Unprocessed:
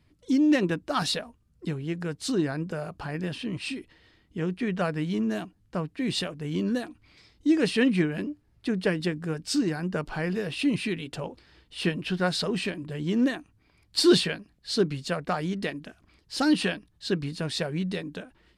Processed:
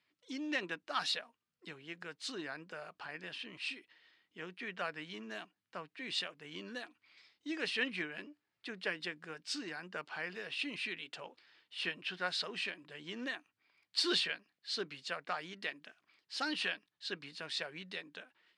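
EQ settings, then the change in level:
band-pass filter 120–2,500 Hz
first difference
+8.0 dB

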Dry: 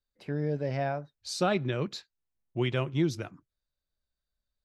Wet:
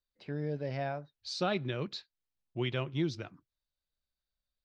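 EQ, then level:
low-pass with resonance 4,400 Hz, resonance Q 1.6
−5.0 dB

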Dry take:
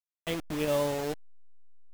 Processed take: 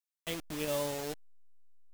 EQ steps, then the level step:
high-shelf EQ 3,100 Hz +8.5 dB
−6.5 dB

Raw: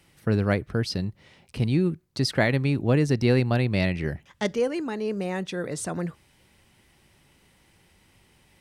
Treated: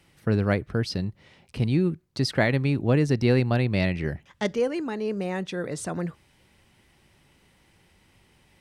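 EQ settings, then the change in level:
high-shelf EQ 7,000 Hz −5 dB
0.0 dB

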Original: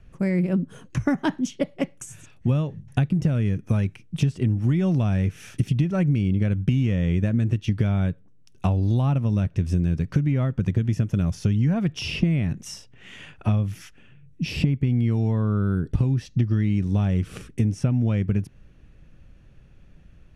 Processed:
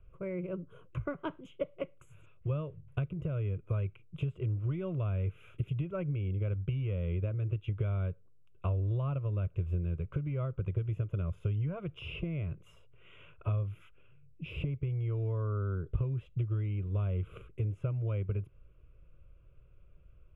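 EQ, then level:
moving average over 10 samples
parametric band 190 Hz −3 dB 0.97 octaves
phaser with its sweep stopped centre 1,200 Hz, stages 8
−6.0 dB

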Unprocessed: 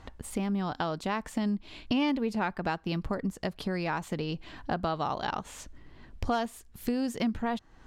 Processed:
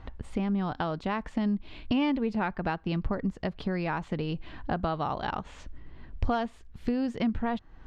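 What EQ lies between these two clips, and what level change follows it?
low-pass filter 3,500 Hz 12 dB per octave
low-shelf EQ 110 Hz +8 dB
0.0 dB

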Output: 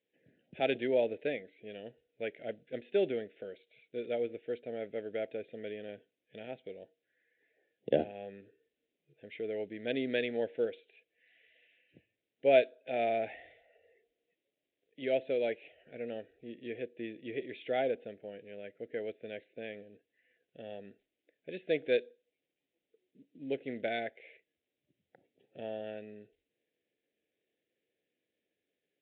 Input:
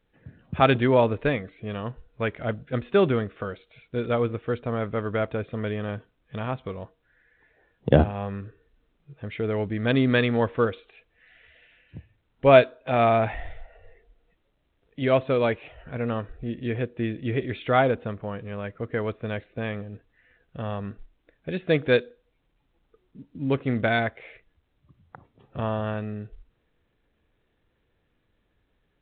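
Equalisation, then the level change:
dynamic equaliser 870 Hz, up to +4 dB, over −33 dBFS, Q 1.3
band-pass filter 400–3,100 Hz
Butterworth band-reject 1,100 Hz, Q 0.71
−6.0 dB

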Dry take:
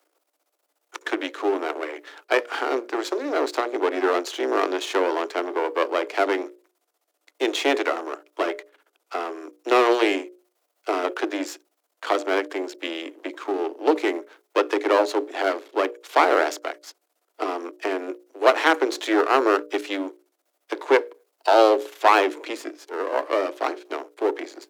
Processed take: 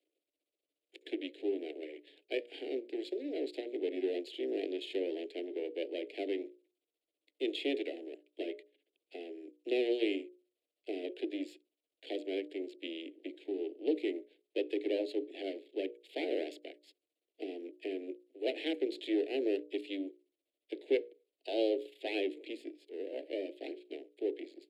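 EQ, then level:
Butterworth band-reject 1,200 Hz, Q 0.53
high-frequency loss of the air 69 metres
phaser with its sweep stopped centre 2,600 Hz, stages 4
−8.0 dB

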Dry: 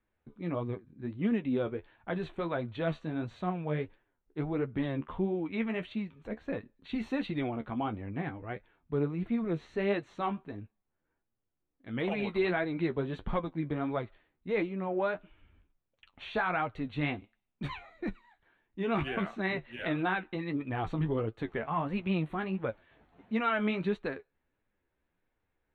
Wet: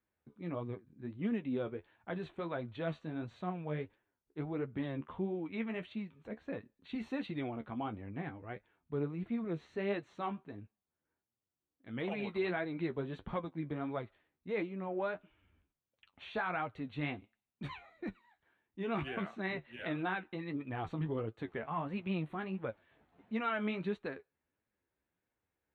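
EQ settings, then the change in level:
high-pass filter 64 Hz
−5.5 dB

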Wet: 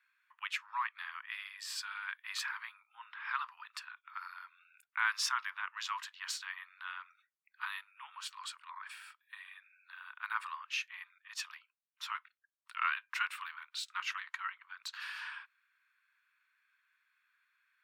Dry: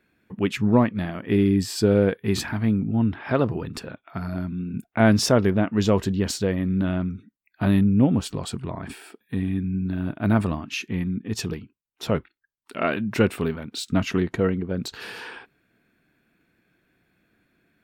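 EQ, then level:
Butterworth high-pass 1,000 Hz 72 dB per octave
high-shelf EQ 4,300 Hz −10 dB
−3.0 dB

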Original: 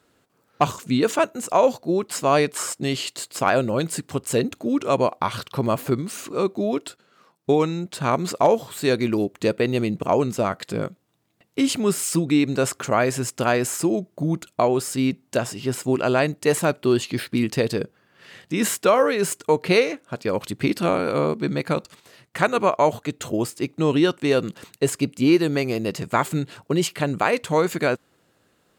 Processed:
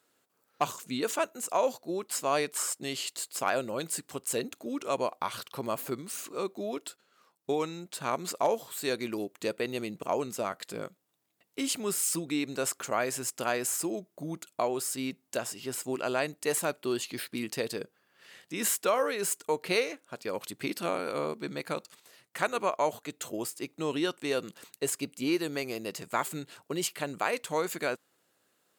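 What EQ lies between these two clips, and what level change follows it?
high-pass filter 380 Hz 6 dB per octave
high-shelf EQ 7,400 Hz +10 dB
−8.5 dB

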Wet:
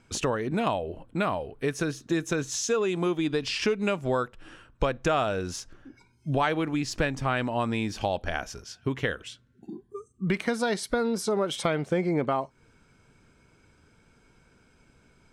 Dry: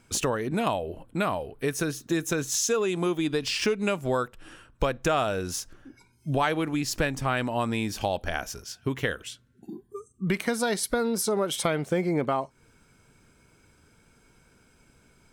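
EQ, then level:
high-frequency loss of the air 61 metres
0.0 dB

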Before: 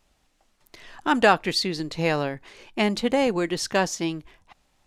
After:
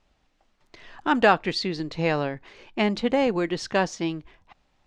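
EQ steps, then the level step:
high-frequency loss of the air 110 metres
0.0 dB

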